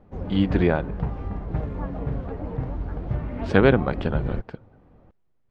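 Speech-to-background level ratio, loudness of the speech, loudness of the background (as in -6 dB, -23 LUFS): 8.0 dB, -23.0 LUFS, -31.0 LUFS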